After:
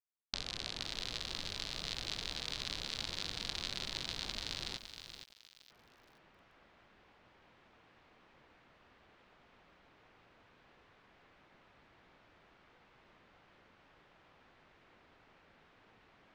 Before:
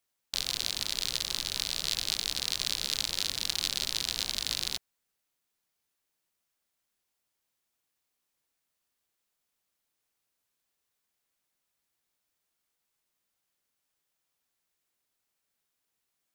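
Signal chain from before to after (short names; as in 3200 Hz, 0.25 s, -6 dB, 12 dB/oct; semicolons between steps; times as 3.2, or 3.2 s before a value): recorder AGC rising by 31 dB/s; vibrato 0.73 Hz 25 cents; low-pass opened by the level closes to 2200 Hz, open at -29.5 dBFS; gate with hold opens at -52 dBFS; tape spacing loss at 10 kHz 21 dB; lo-fi delay 0.47 s, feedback 35%, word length 9-bit, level -8.5 dB; gain -1.5 dB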